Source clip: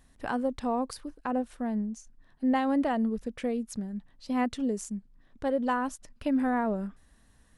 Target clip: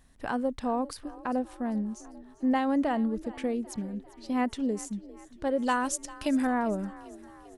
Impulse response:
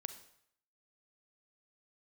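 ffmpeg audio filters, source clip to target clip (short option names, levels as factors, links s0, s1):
-filter_complex "[0:a]asettb=1/sr,asplit=3[s0][s1][s2];[s0]atrim=end=5.594[s3];[s1]atrim=start=5.59:end=6.47,asetpts=PTS-STARTPTS,afade=t=in:d=0.004:c=qsin,afade=t=out:st=0.876:d=0.004:c=qsin,equalizer=f=7400:t=o:w=2.4:g=14[s4];[s2]atrim=start=6.466[s5];[s3][s4]acrossfade=d=0.004:c1=hsin:c2=qsin[s6];[s6][s5]acrossfade=d=0.004:c1=qsin:c2=hsin,asplit=6[s7][s8][s9][s10][s11][s12];[s8]adelay=397,afreqshift=36,volume=0.112[s13];[s9]adelay=794,afreqshift=72,volume=0.0631[s14];[s10]adelay=1191,afreqshift=108,volume=0.0351[s15];[s11]adelay=1588,afreqshift=144,volume=0.0197[s16];[s12]adelay=1985,afreqshift=180,volume=0.0111[s17];[s7][s13][s14][s15][s16][s17]amix=inputs=6:normalize=0"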